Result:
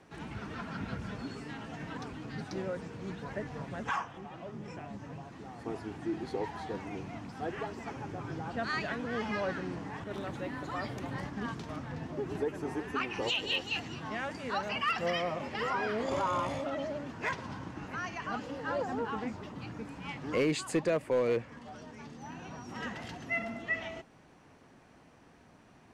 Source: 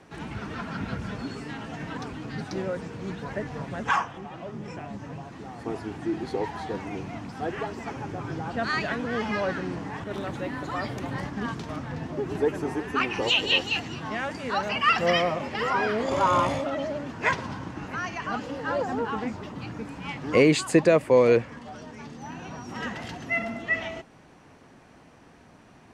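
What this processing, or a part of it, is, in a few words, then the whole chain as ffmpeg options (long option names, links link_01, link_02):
clipper into limiter: -af "asoftclip=type=hard:threshold=-12.5dB,alimiter=limit=-16.5dB:level=0:latency=1:release=268,volume=-6dB"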